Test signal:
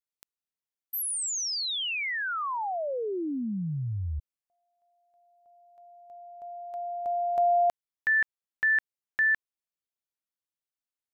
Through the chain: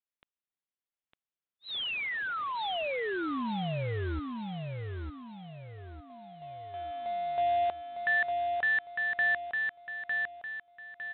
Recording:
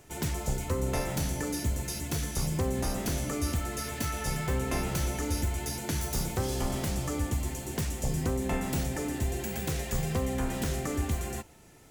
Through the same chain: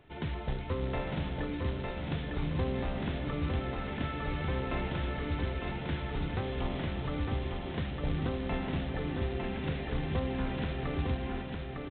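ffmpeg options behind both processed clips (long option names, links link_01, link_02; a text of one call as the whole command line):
ffmpeg -i in.wav -af "aresample=8000,acrusher=bits=4:mode=log:mix=0:aa=0.000001,aresample=44100,aecho=1:1:905|1810|2715|3620|4525:0.631|0.252|0.101|0.0404|0.0162,volume=-3.5dB" out.wav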